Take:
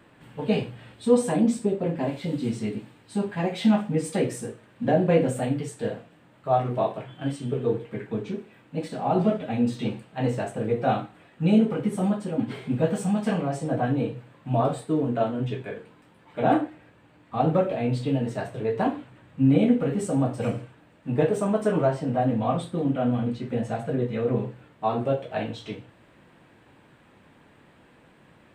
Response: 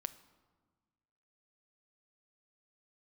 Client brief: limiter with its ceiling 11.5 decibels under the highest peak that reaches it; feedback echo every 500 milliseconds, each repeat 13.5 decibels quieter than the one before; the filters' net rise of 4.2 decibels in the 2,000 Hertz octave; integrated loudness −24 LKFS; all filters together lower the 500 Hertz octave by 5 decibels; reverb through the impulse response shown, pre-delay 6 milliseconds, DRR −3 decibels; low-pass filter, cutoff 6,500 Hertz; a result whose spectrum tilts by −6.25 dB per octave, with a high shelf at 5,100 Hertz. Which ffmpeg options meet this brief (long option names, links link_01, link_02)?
-filter_complex "[0:a]lowpass=6500,equalizer=frequency=500:width_type=o:gain=-6.5,equalizer=frequency=2000:width_type=o:gain=5.5,highshelf=frequency=5100:gain=3,alimiter=limit=-21.5dB:level=0:latency=1,aecho=1:1:500|1000:0.211|0.0444,asplit=2[link_01][link_02];[1:a]atrim=start_sample=2205,adelay=6[link_03];[link_02][link_03]afir=irnorm=-1:irlink=0,volume=5dB[link_04];[link_01][link_04]amix=inputs=2:normalize=0,volume=3dB"